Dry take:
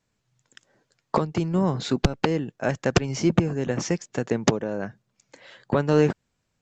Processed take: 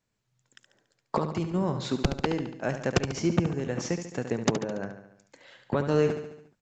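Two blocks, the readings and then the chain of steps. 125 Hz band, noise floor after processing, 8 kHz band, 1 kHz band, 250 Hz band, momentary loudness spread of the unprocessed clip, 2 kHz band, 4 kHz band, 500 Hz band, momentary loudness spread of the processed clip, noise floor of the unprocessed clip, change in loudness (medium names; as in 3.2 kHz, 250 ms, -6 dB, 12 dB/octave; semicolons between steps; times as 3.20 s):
-4.5 dB, -79 dBFS, no reading, -4.5 dB, -4.5 dB, 7 LU, -4.5 dB, -4.0 dB, -4.0 dB, 8 LU, -76 dBFS, -4.5 dB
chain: feedback delay 71 ms, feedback 55%, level -9 dB; trim -5 dB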